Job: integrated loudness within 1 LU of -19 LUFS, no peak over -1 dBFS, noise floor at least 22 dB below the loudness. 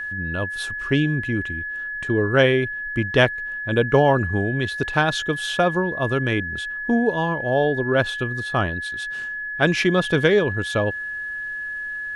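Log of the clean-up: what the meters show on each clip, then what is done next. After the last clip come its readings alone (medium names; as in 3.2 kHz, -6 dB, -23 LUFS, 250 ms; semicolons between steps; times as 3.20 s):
steady tone 1.7 kHz; tone level -27 dBFS; loudness -22.0 LUFS; peak level -2.0 dBFS; loudness target -19.0 LUFS
-> band-stop 1.7 kHz, Q 30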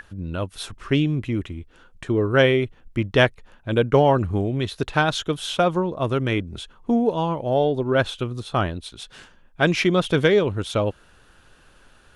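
steady tone not found; loudness -22.0 LUFS; peak level -2.0 dBFS; loudness target -19.0 LUFS
-> trim +3 dB; peak limiter -1 dBFS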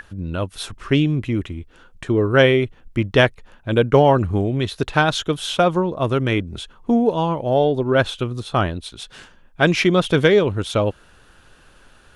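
loudness -19.0 LUFS; peak level -1.0 dBFS; noise floor -51 dBFS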